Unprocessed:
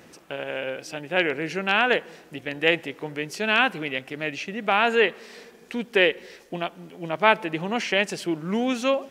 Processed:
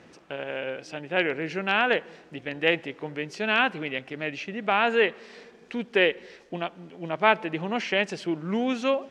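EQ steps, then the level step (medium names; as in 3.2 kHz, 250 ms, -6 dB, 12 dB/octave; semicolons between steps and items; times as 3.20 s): distance through air 89 m; -1.5 dB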